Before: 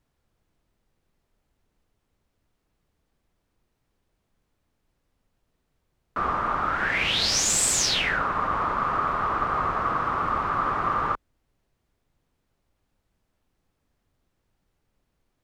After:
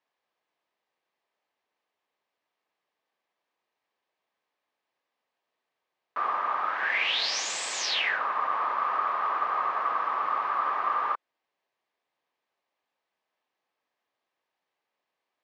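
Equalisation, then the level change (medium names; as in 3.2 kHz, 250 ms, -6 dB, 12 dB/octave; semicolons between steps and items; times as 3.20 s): Gaussian low-pass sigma 1.7 samples; high-pass 720 Hz 12 dB/octave; band-stop 1.4 kHz, Q 7.5; 0.0 dB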